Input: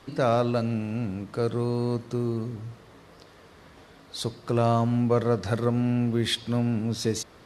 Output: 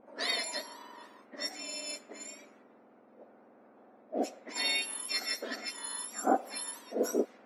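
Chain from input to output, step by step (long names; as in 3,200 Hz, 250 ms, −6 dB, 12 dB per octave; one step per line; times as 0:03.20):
frequency axis turned over on the octave scale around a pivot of 1,600 Hz
low-pass that shuts in the quiet parts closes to 830 Hz, open at −25.5 dBFS
high-shelf EQ 4,100 Hz −9.5 dB
tuned comb filter 250 Hz, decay 0.4 s, mix 40%
level +4 dB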